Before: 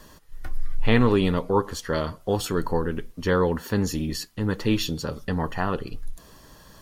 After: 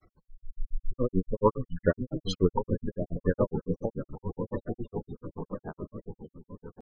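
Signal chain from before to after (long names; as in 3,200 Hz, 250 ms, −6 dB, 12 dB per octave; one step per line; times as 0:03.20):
source passing by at 0:02.10, 21 m/s, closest 8.1 metres
floating-point word with a short mantissa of 2 bits
low-pass filter 5,900 Hz 12 dB per octave
on a send: echo whose low-pass opens from repeat to repeat 566 ms, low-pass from 200 Hz, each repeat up 2 octaves, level −6 dB
on the sum: gate on every frequency bin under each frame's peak −15 dB strong
granular cloud 103 ms, grains 7.1 per second, pitch spread up and down by 3 semitones
wow of a warped record 45 rpm, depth 160 cents
level +7.5 dB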